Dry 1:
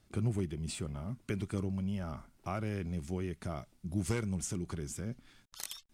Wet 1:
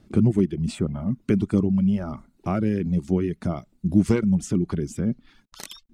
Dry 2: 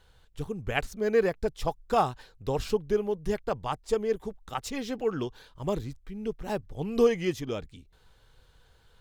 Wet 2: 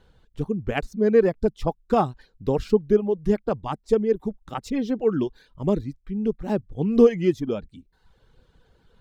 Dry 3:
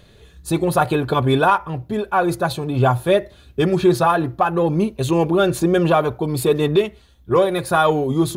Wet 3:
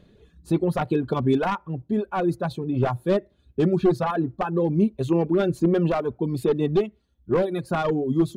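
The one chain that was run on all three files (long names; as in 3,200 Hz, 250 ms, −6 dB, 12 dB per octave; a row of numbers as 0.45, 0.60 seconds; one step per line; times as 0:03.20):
wavefolder on the positive side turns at −11.5 dBFS
reverb reduction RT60 0.75 s
drawn EQ curve 110 Hz 0 dB, 210 Hz +9 dB, 370 Hz +5 dB, 750 Hz −1 dB, 5,100 Hz −6 dB, 11,000 Hz −11 dB
loudness normalisation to −24 LKFS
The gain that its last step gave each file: +10.5, +3.5, −7.5 decibels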